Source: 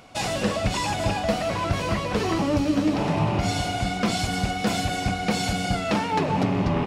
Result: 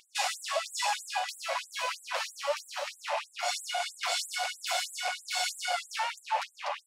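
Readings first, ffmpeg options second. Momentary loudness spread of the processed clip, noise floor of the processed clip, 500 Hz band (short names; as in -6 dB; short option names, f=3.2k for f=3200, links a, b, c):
4 LU, -60 dBFS, -11.0 dB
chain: -af "aeval=exprs='0.251*(cos(1*acos(clip(val(0)/0.251,-1,1)))-cos(1*PI/2))+0.0316*(cos(2*acos(clip(val(0)/0.251,-1,1)))-cos(2*PI/2))+0.00316*(cos(6*acos(clip(val(0)/0.251,-1,1)))-cos(6*PI/2))':c=same,afftfilt=real='re*gte(b*sr/1024,500*pow(7500/500,0.5+0.5*sin(2*PI*3.1*pts/sr)))':imag='im*gte(b*sr/1024,500*pow(7500/500,0.5+0.5*sin(2*PI*3.1*pts/sr)))':win_size=1024:overlap=0.75,volume=-1dB"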